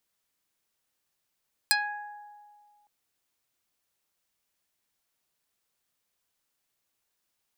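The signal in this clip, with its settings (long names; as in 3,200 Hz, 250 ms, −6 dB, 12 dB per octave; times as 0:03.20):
Karplus-Strong string G#5, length 1.16 s, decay 2.01 s, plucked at 0.27, dark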